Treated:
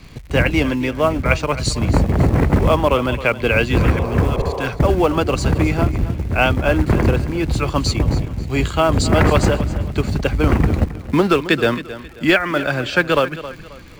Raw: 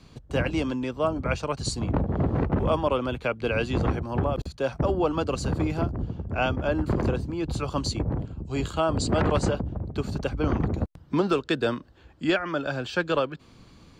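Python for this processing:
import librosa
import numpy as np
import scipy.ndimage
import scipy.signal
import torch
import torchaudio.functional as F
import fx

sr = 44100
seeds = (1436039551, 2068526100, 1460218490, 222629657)

p1 = fx.dmg_crackle(x, sr, seeds[0], per_s=110.0, level_db=-42.0)
p2 = fx.quant_float(p1, sr, bits=2)
p3 = p1 + (p2 * librosa.db_to_amplitude(-4.0))
p4 = fx.low_shelf(p3, sr, hz=63.0, db=8.5)
p5 = fx.spec_repair(p4, sr, seeds[1], start_s=3.83, length_s=0.84, low_hz=370.0, high_hz=1200.0, source='before')
p6 = fx.peak_eq(p5, sr, hz=2100.0, db=8.5, octaves=0.66)
p7 = p6 + fx.echo_feedback(p6, sr, ms=268, feedback_pct=33, wet_db=-14.5, dry=0)
y = p7 * librosa.db_to_amplitude(3.5)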